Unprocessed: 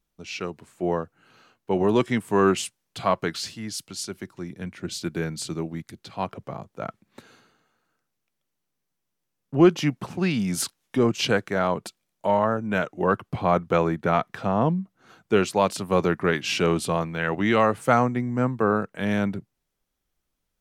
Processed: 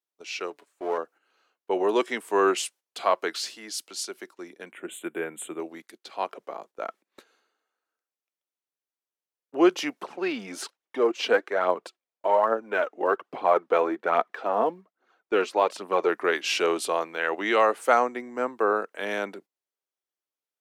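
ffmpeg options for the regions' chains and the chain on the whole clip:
ffmpeg -i in.wav -filter_complex "[0:a]asettb=1/sr,asplit=3[link_01][link_02][link_03];[link_01]atrim=end=0.504[link_04];[link_02]atrim=start=0.5:end=0.98,asetpts=PTS-STARTPTS,afade=type=in:duration=0.004:curve=qsin,afade=type=out:start_time=0.476:duration=0.004:curve=qsin,aeval=exprs='if(lt(val(0),0),0.447*val(0),val(0))':channel_layout=same,aecho=1:1:7:0.38,atrim=end_sample=21168[link_05];[link_03]atrim=start=0.976[link_06];[link_04][link_05]acrossfade=duration=0.004:curve1=hsin:curve2=qsin[link_07];[link_07][link_06]acrossfade=duration=0.004:curve1=qsin:curve2=hsin,asettb=1/sr,asplit=3[link_08][link_09][link_10];[link_08]atrim=end=4.714[link_11];[link_09]atrim=start=4.71:end=5.6,asetpts=PTS-STARTPTS,afade=type=in:duration=0.004:curve=qsin,afade=type=out:start_time=0.886:duration=0.004:curve=qsin,asuperstop=centerf=5100:order=8:qfactor=1.2,equalizer=frequency=99:width_type=o:width=1.7:gain=7.5[link_12];[link_10]atrim=start=5.596[link_13];[link_11][link_12]acrossfade=duration=0.004:curve1=hsin:curve2=qsin[link_14];[link_14][link_13]acrossfade=duration=0.004:curve1=qsin:curve2=hsin,asettb=1/sr,asplit=3[link_15][link_16][link_17];[link_15]atrim=end=10.034[link_18];[link_16]atrim=start=10.03:end=16.09,asetpts=PTS-STARTPTS,afade=type=in:duration=0.004:curve=qsin,afade=type=out:start_time=6.056:duration=0.004:curve=qsin,aemphasis=mode=reproduction:type=75kf,aphaser=in_gain=1:out_gain=1:delay=4.7:decay=0.46:speed=1.2:type=triangular[link_19];[link_17]atrim=start=16.086[link_20];[link_18][link_19]acrossfade=duration=0.004:curve1=hsin:curve2=qsin[link_21];[link_21][link_20]acrossfade=duration=0.004:curve1=qsin:curve2=hsin,highpass=frequency=350:width=0.5412,highpass=frequency=350:width=1.3066,agate=range=-12dB:threshold=-48dB:ratio=16:detection=peak" out.wav

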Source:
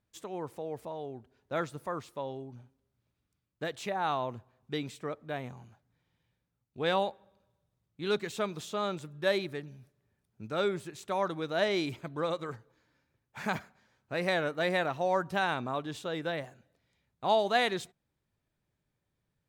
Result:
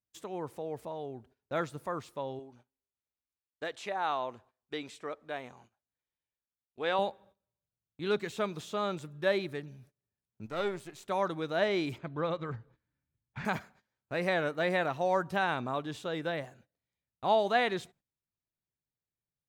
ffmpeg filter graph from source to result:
ffmpeg -i in.wav -filter_complex "[0:a]asettb=1/sr,asplit=3[link_01][link_02][link_03];[link_01]atrim=end=2.394[link_04];[link_02]atrim=start=2.39:end=6.99,asetpts=PTS-STARTPTS,afade=type=in:duration=0.004:curve=qsin,afade=type=out:start_time=4.596:duration=0.004:curve=qsin,lowpass=10000,equalizer=frequency=130:width_type=o:width=1.8:gain=-14[link_05];[link_03]atrim=start=6.986[link_06];[link_04][link_05]acrossfade=duration=0.004:curve1=hsin:curve2=qsin[link_07];[link_07][link_06]acrossfade=duration=0.004:curve1=qsin:curve2=hsin,asettb=1/sr,asplit=3[link_08][link_09][link_10];[link_08]atrim=end=10.464[link_11];[link_09]atrim=start=10.46:end=11.09,asetpts=PTS-STARTPTS,afade=type=in:duration=0.004:curve=qsin,afade=type=out:start_time=0.626:duration=0.004:curve=qsin,aeval=exprs='if(lt(val(0),0),0.447*val(0),val(0))':channel_layout=same,lowshelf=frequency=120:gain=-8[link_12];[link_10]atrim=start=11.086[link_13];[link_11][link_12]acrossfade=duration=0.004:curve1=hsin:curve2=qsin[link_14];[link_14][link_13]acrossfade=duration=0.004:curve1=qsin:curve2=hsin,asettb=1/sr,asplit=3[link_15][link_16][link_17];[link_15]atrim=end=11.984[link_18];[link_16]atrim=start=11.98:end=13.45,asetpts=PTS-STARTPTS,afade=type=in:duration=0.004:curve=qsin,afade=type=out:start_time=1.466:duration=0.004:curve=qsin,lowpass=3500,asubboost=boost=9:cutoff=240[link_19];[link_17]atrim=start=13.446[link_20];[link_18][link_19]acrossfade=duration=0.004:curve1=hsin:curve2=qsin[link_21];[link_21][link_20]acrossfade=duration=0.004:curve1=qsin:curve2=hsin,agate=range=-17dB:threshold=-59dB:ratio=16:detection=peak,acrossover=split=3300[link_22][link_23];[link_23]acompressor=threshold=-46dB:ratio=4:attack=1:release=60[link_24];[link_22][link_24]amix=inputs=2:normalize=0" out.wav

